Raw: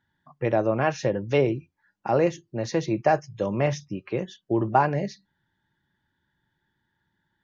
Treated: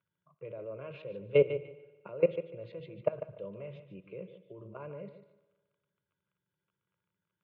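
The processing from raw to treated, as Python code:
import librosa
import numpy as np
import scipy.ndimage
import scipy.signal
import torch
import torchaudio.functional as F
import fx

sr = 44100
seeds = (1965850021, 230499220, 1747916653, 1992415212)

y = fx.peak_eq(x, sr, hz=1300.0, db=-14.5, octaves=1.2)
y = fx.level_steps(y, sr, step_db=21)
y = fx.dmg_crackle(y, sr, seeds[0], per_s=29.0, level_db=-63.0)
y = fx.cabinet(y, sr, low_hz=190.0, low_slope=12, high_hz=2400.0, hz=(200.0, 340.0, 720.0, 1400.0), db=(6, -10, -6, 3))
y = fx.fixed_phaser(y, sr, hz=1200.0, stages=8)
y = fx.echo_feedback(y, sr, ms=147, feedback_pct=20, wet_db=-11)
y = fx.rev_spring(y, sr, rt60_s=1.4, pass_ms=(53,), chirp_ms=50, drr_db=17.0)
y = y * 10.0 ** (6.0 / 20.0)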